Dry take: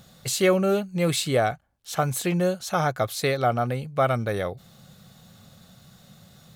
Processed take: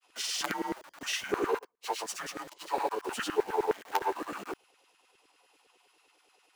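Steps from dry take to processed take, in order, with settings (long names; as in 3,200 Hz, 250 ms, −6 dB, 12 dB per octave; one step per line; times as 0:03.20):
phase-vocoder pitch shift without resampling −5 semitones
on a send at −20 dB: guitar amp tone stack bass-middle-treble 10-0-1 + convolution reverb RT60 2.2 s, pre-delay 4 ms
on the sum: granular cloud, pitch spread up and down by 0 semitones
in parallel at −9 dB: log-companded quantiser 2 bits
on the sum: frequency shifter −100 Hz
auto-filter high-pass saw down 9.7 Hz 370–1,700 Hz
level −7 dB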